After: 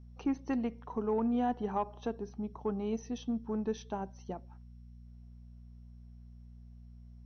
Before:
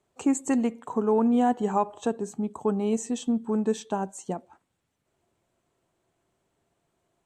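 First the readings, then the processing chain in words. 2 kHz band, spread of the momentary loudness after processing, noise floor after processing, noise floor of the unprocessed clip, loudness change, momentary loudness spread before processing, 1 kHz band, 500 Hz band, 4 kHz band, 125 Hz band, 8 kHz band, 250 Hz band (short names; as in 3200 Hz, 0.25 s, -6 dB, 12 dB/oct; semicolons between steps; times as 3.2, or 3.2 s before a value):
-8.0 dB, 22 LU, -52 dBFS, -77 dBFS, -9.0 dB, 10 LU, -8.5 dB, -9.0 dB, -8.5 dB, -6.0 dB, -18.0 dB, -8.5 dB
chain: added harmonics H 4 -29 dB, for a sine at -11.5 dBFS; buzz 60 Hz, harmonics 4, -43 dBFS -7 dB/oct; gain -8.5 dB; MP2 64 kbps 22050 Hz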